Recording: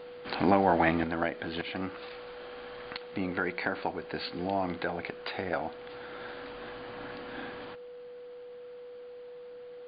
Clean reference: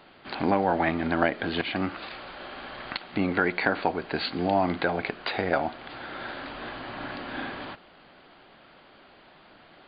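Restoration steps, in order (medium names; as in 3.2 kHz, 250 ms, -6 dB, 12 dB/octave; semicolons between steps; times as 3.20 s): band-stop 490 Hz, Q 30; trim 0 dB, from 1.04 s +7 dB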